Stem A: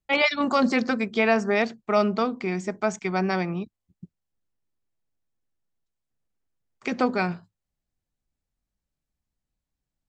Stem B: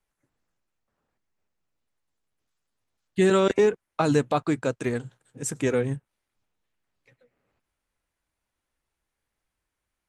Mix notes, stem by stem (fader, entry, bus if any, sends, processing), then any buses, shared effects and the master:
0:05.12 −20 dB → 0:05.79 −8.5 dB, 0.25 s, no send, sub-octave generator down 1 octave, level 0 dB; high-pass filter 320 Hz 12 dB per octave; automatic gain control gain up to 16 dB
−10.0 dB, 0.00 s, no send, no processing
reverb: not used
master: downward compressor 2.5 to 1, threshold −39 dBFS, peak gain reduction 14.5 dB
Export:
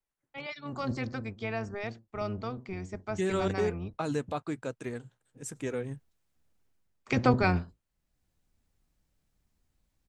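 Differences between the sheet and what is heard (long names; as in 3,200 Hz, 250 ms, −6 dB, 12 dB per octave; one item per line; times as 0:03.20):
stem A: missing high-pass filter 320 Hz 12 dB per octave
master: missing downward compressor 2.5 to 1, threshold −39 dBFS, peak gain reduction 14.5 dB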